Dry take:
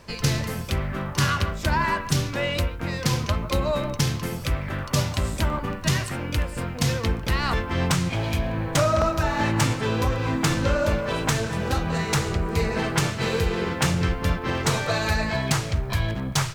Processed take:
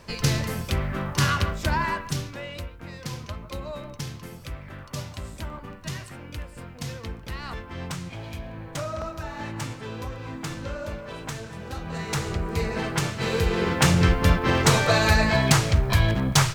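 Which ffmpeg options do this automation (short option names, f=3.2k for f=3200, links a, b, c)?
-af "volume=15.5dB,afade=t=out:st=1.5:d=0.94:silence=0.281838,afade=t=in:st=11.71:d=0.61:silence=0.398107,afade=t=in:st=13.14:d=0.9:silence=0.421697"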